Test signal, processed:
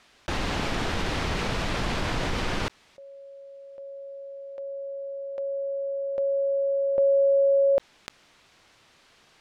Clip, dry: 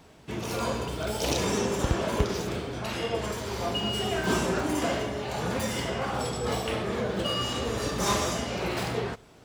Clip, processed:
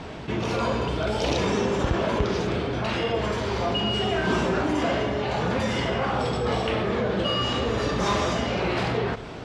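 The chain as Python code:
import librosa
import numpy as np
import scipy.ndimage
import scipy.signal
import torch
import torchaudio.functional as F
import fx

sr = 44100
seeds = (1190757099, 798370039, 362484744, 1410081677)

y = scipy.signal.sosfilt(scipy.signal.butter(2, 4000.0, 'lowpass', fs=sr, output='sos'), x)
y = fx.env_flatten(y, sr, amount_pct=50)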